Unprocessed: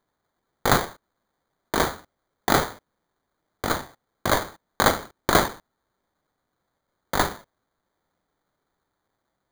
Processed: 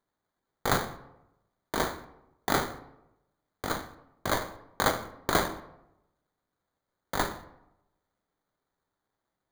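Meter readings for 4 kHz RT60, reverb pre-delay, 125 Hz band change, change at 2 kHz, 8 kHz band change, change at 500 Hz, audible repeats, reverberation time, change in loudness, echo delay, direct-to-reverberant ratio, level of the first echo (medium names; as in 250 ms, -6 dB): 0.50 s, 5 ms, -6.5 dB, -6.5 dB, -7.0 dB, -6.5 dB, no echo, 0.90 s, -7.0 dB, no echo, 9.5 dB, no echo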